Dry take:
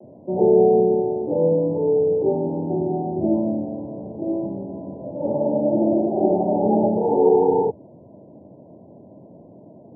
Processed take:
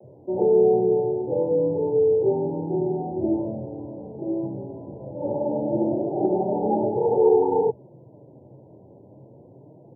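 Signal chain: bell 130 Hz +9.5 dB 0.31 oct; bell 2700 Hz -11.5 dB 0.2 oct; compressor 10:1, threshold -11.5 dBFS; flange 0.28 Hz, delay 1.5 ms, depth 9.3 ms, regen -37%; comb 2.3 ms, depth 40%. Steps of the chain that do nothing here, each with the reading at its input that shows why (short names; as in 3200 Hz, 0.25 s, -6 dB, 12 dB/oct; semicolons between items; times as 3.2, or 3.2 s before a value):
bell 2700 Hz: input band ends at 960 Hz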